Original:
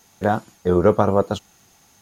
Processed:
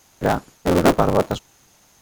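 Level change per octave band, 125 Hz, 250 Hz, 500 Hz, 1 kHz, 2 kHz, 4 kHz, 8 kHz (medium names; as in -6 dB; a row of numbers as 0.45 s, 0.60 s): 0.0 dB, +1.0 dB, -1.0 dB, +1.0 dB, +4.0 dB, +7.0 dB, no reading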